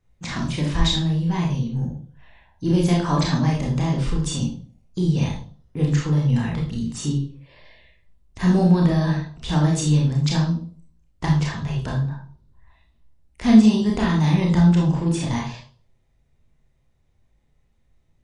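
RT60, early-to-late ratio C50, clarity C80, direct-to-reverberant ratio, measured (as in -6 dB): 0.45 s, 4.5 dB, 10.0 dB, -1.5 dB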